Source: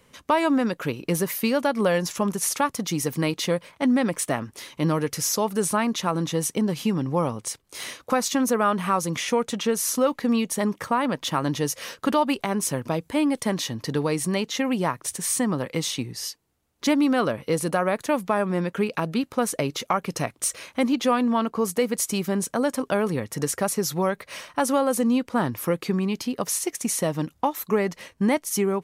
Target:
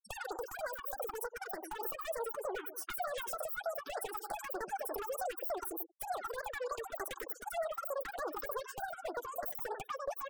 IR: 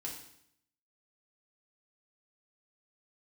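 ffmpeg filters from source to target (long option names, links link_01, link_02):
-filter_complex "[0:a]asplit=2[link_01][link_02];[link_02]adelay=259,lowpass=frequency=800:poles=1,volume=-12.5dB,asplit=2[link_03][link_04];[link_04]adelay=259,lowpass=frequency=800:poles=1,volume=0.2[link_05];[link_01][link_03][link_05]amix=inputs=3:normalize=0,asetrate=123480,aresample=44100,afftfilt=real='re*gte(hypot(re,im),0.0126)':imag='im*gte(hypot(re,im),0.0126)':win_size=1024:overlap=0.75,acompressor=threshold=-30dB:ratio=16,highshelf=frequency=5300:gain=3,aeval=exprs='0.0531*(abs(mod(val(0)/0.0531+3,4)-2)-1)':channel_layout=same,equalizer=frequency=4200:width=0.44:gain=-14,flanger=delay=1.5:depth=7.2:regen=-16:speed=0.16:shape=triangular,alimiter=level_in=15.5dB:limit=-24dB:level=0:latency=1:release=198,volume=-15.5dB,acrossover=split=470|3000[link_06][link_07][link_08];[link_06]acompressor=threshold=-52dB:ratio=4[link_09];[link_09][link_07][link_08]amix=inputs=3:normalize=0,afftfilt=real='re*(1-between(b*sr/1024,520*pow(3100/520,0.5+0.5*sin(2*PI*3.3*pts/sr))/1.41,520*pow(3100/520,0.5+0.5*sin(2*PI*3.3*pts/sr))*1.41))':imag='im*(1-between(b*sr/1024,520*pow(3100/520,0.5+0.5*sin(2*PI*3.3*pts/sr))/1.41,520*pow(3100/520,0.5+0.5*sin(2*PI*3.3*pts/sr))*1.41))':win_size=1024:overlap=0.75,volume=10.5dB"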